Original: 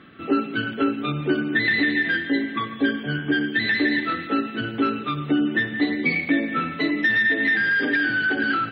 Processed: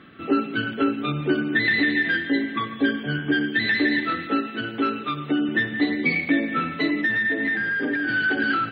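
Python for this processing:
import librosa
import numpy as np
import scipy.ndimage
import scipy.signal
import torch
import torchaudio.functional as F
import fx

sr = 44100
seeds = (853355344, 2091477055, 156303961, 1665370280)

y = fx.low_shelf(x, sr, hz=160.0, db=-9.0, at=(4.38, 5.49))
y = fx.lowpass(y, sr, hz=fx.line((7.01, 1900.0), (8.07, 1000.0)), slope=6, at=(7.01, 8.07), fade=0.02)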